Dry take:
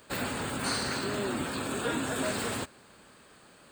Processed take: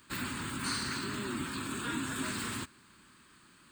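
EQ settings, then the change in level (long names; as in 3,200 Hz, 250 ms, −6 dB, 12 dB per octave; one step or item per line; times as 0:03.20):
flat-topped bell 590 Hz −14.5 dB 1.1 octaves
−3.0 dB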